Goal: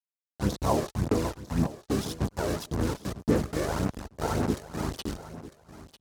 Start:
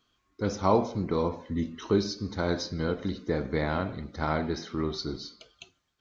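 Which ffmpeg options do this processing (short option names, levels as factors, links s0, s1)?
-filter_complex "[0:a]acrusher=bits=4:mix=0:aa=0.000001,aexciter=amount=5.7:drive=4.2:freq=5300,areverse,acompressor=mode=upward:threshold=0.0224:ratio=2.5,areverse,aemphasis=mode=reproduction:type=75fm,aphaser=in_gain=1:out_gain=1:delay=1.8:decay=0.56:speed=1.8:type=sinusoidal,highpass=f=50:w=0.5412,highpass=f=50:w=1.3066,highshelf=f=2300:g=-4,bandreject=f=3400:w=12,asplit=2[s0][s1];[s1]aecho=0:1:948|1896:0.168|0.0353[s2];[s0][s2]amix=inputs=2:normalize=0,asplit=2[s3][s4];[s4]asetrate=29433,aresample=44100,atempo=1.49831,volume=1[s5];[s3][s5]amix=inputs=2:normalize=0,volume=0.501"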